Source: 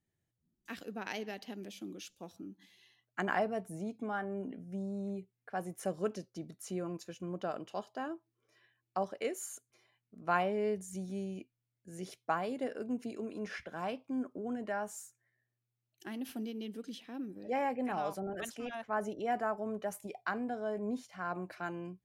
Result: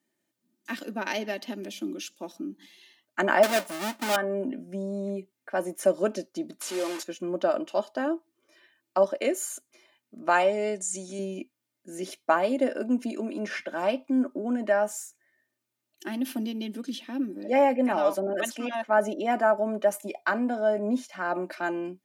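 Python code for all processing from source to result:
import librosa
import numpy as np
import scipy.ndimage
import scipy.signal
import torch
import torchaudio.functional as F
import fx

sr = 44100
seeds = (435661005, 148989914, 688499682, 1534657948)

y = fx.chain(x, sr, fx.halfwave_hold(),
    fx.highpass(hz=480.0, slope=6), at=(3.43, 4.16))
y = fx.chain(y, sr, fx.delta_mod(bps=64000, step_db=-39.5),
    fx.highpass(hz=380.0, slope=12), at=(6.61, 7.03))
y = fx.chain(y, sr, fx.lowpass_res(hz=7900.0, q=3.4),
    fx.low_shelf(hz=430.0, db=-6.5), at=(10.29, 11.19))
y = scipy.signal.sosfilt(scipy.signal.butter(4, 180.0, 'highpass', fs=sr, output='sos'), y)
y = fx.dynamic_eq(y, sr, hz=560.0, q=2.4, threshold_db=-47.0, ratio=4.0, max_db=4)
y = y + 0.62 * np.pad(y, (int(3.3 * sr / 1000.0), 0))[:len(y)]
y = y * librosa.db_to_amplitude(8.5)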